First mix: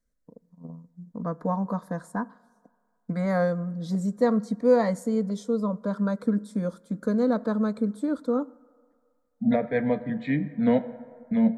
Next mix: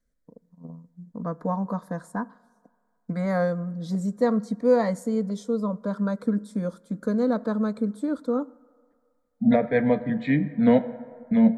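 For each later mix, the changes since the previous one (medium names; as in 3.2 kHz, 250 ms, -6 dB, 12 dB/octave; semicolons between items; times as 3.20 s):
second voice +3.5 dB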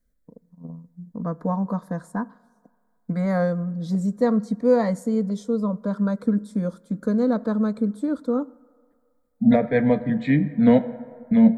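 second voice: remove distance through air 73 m; master: add bass shelf 260 Hz +5.5 dB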